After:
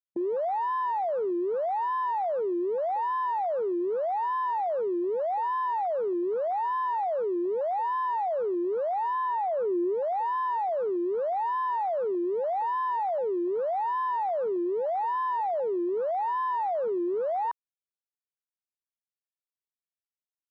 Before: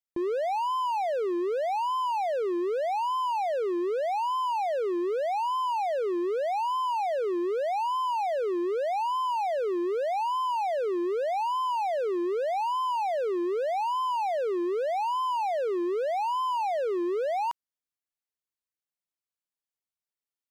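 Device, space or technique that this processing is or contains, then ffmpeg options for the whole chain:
over-cleaned archive recording: -filter_complex "[0:a]asplit=3[a][b][c];[a]afade=t=out:st=9.13:d=0.02[d];[b]bass=f=250:g=8,treble=f=4k:g=-8,afade=t=in:st=9.13:d=0.02,afade=t=out:st=9.93:d=0.02[e];[c]afade=t=in:st=9.93:d=0.02[f];[d][e][f]amix=inputs=3:normalize=0,highpass=100,lowpass=5.3k,afwtdn=0.0224"

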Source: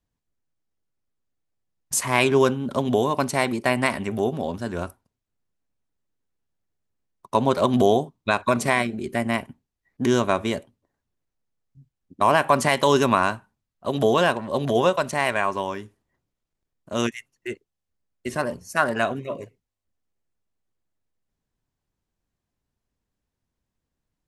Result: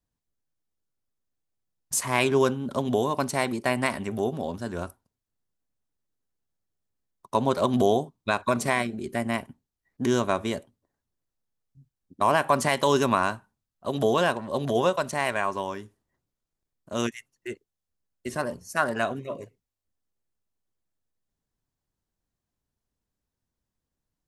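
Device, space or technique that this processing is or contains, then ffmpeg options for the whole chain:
exciter from parts: -filter_complex "[0:a]asplit=2[a][b];[b]highpass=f=2.2k:w=0.5412,highpass=f=2.2k:w=1.3066,asoftclip=type=tanh:threshold=-28.5dB,volume=-9.5dB[c];[a][c]amix=inputs=2:normalize=0,volume=-3.5dB"

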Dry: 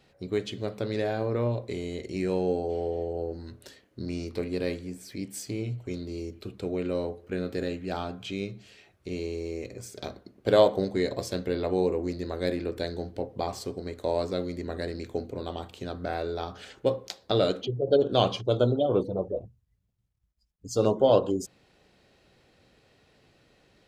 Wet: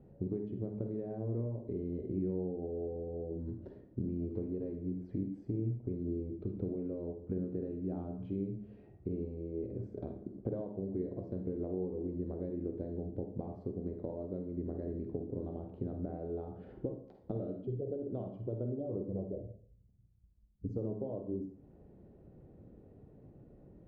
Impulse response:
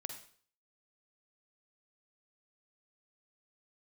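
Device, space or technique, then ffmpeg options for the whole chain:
television next door: -filter_complex "[0:a]acompressor=threshold=-41dB:ratio=6,lowpass=350[a];[1:a]atrim=start_sample=2205[b];[a][b]afir=irnorm=-1:irlink=0,volume=12dB"

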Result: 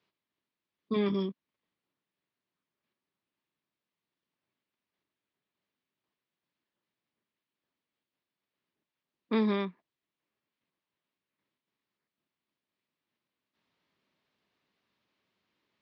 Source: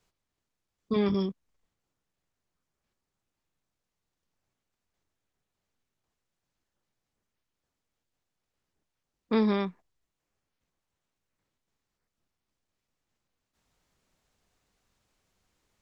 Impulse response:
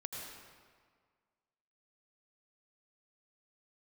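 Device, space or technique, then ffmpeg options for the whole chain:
kitchen radio: -af "highpass=200,equalizer=f=490:t=q:w=4:g=-5,equalizer=f=760:t=q:w=4:g=-7,equalizer=f=1.4k:t=q:w=4:g=-4,lowpass=f=4.2k:w=0.5412,lowpass=f=4.2k:w=1.3066"

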